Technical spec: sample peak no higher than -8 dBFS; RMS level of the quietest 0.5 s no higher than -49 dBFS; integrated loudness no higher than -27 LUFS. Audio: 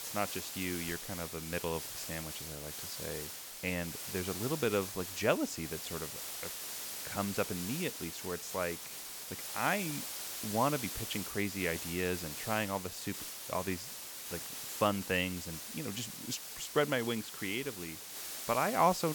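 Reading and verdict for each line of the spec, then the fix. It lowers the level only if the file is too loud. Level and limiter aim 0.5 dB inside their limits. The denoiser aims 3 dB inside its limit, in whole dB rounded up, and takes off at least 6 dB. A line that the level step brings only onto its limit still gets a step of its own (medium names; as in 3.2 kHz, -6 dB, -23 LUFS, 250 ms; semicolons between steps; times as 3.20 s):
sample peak -15.0 dBFS: pass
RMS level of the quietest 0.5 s -45 dBFS: fail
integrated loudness -36.0 LUFS: pass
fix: noise reduction 7 dB, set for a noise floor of -45 dBFS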